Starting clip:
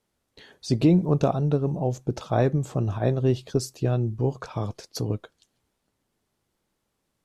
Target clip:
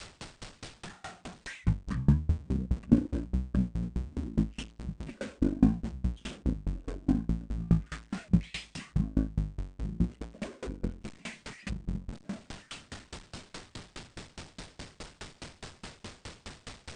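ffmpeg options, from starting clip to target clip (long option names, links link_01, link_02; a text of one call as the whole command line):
ffmpeg -i in.wav -af "aeval=exprs='val(0)+0.5*0.0335*sgn(val(0))':channel_layout=same,adynamicequalizer=threshold=0.0141:dfrequency=540:dqfactor=1.2:tfrequency=540:tqfactor=1.2:attack=5:release=100:ratio=0.375:range=4:mode=boostabove:tftype=bell,asetrate=18846,aresample=44100,aeval=exprs='val(0)*pow(10,-29*if(lt(mod(4.8*n/s,1),2*abs(4.8)/1000),1-mod(4.8*n/s,1)/(2*abs(4.8)/1000),(mod(4.8*n/s,1)-2*abs(4.8)/1000)/(1-2*abs(4.8)/1000))/20)':channel_layout=same,volume=-3dB" out.wav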